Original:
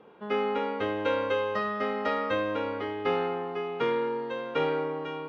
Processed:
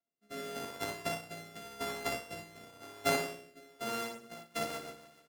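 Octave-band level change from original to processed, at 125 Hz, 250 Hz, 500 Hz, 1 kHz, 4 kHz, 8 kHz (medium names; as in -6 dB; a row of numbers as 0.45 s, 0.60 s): -6.5 dB, -10.5 dB, -13.0 dB, -10.0 dB, -2.0 dB, no reading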